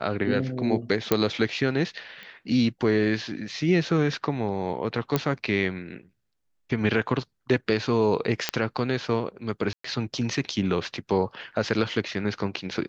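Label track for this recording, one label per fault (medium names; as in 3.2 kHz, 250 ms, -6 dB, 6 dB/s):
1.120000	1.120000	pop -6 dBFS
2.230000	2.230000	pop -29 dBFS
5.160000	5.160000	pop -8 dBFS
8.490000	8.490000	pop -6 dBFS
9.730000	9.840000	dropout 114 ms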